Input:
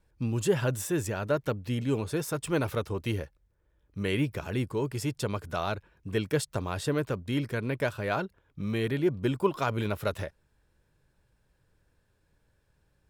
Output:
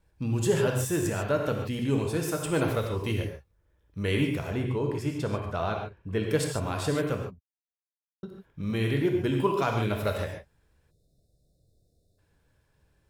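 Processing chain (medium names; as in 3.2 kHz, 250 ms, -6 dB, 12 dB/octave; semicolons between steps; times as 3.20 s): 4.47–6.31 s: treble shelf 3.8 kHz -11.5 dB; 7.24–8.23 s: mute; gated-style reverb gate 170 ms flat, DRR 1.5 dB; 10.91–12.18 s: spectral selection erased 770–3500 Hz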